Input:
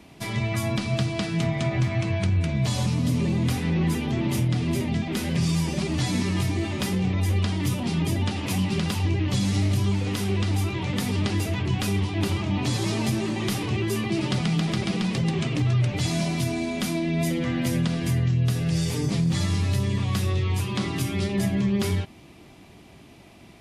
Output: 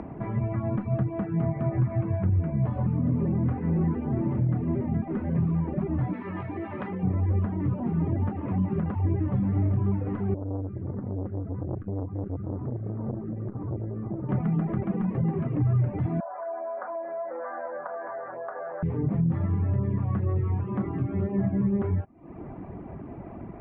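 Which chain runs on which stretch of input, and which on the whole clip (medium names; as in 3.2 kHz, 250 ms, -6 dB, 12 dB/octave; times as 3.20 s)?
6.13–7.03 s: Bessel low-pass 10 kHz + tilt EQ +4 dB/octave
10.34–14.29 s: FFT filter 110 Hz 0 dB, 580 Hz -11 dB, 1.2 kHz -6 dB, 2.4 kHz -18 dB + LFO notch square 1.9 Hz 930–3300 Hz + transformer saturation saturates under 420 Hz
16.20–18.83 s: Chebyshev band-pass 570–1600 Hz, order 3 + short-mantissa float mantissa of 8-bit + level flattener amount 50%
whole clip: Bessel low-pass 1 kHz, order 6; reverb removal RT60 0.54 s; upward compressor, threshold -27 dBFS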